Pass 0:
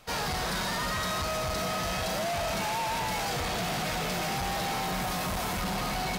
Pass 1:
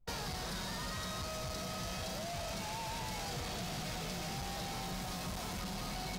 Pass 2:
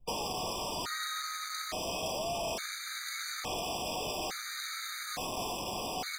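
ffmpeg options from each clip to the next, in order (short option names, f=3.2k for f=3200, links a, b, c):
-filter_complex "[0:a]anlmdn=0.398,lowshelf=f=440:g=6.5,acrossover=split=120|3700|7500[a][b][c][d];[a]acompressor=threshold=-43dB:ratio=4[e];[b]acompressor=threshold=-39dB:ratio=4[f];[c]acompressor=threshold=-41dB:ratio=4[g];[d]acompressor=threshold=-51dB:ratio=4[h];[e][f][g][h]amix=inputs=4:normalize=0,volume=-3.5dB"
-filter_complex "[0:a]acrossover=split=290|1600|5200[a][b][c][d];[a]aeval=exprs='(mod(200*val(0)+1,2)-1)/200':c=same[e];[e][b][c][d]amix=inputs=4:normalize=0,afftfilt=real='re*gt(sin(2*PI*0.58*pts/sr)*(1-2*mod(floor(b*sr/1024/1200),2)),0)':imag='im*gt(sin(2*PI*0.58*pts/sr)*(1-2*mod(floor(b*sr/1024/1200),2)),0)':win_size=1024:overlap=0.75,volume=8dB"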